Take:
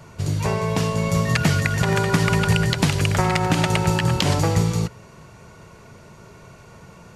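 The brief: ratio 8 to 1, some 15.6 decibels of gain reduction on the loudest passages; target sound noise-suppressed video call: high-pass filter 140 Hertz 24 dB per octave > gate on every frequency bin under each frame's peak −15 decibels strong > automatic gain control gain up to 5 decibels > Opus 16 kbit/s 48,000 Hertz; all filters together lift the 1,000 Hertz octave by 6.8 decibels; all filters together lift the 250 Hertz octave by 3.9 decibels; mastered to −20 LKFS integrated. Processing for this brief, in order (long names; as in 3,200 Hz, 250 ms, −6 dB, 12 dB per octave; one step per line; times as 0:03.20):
parametric band 250 Hz +7.5 dB
parametric band 1,000 Hz +8 dB
downward compressor 8 to 1, threshold −26 dBFS
high-pass filter 140 Hz 24 dB per octave
gate on every frequency bin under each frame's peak −15 dB strong
automatic gain control gain up to 5 dB
level +12.5 dB
Opus 16 kbit/s 48,000 Hz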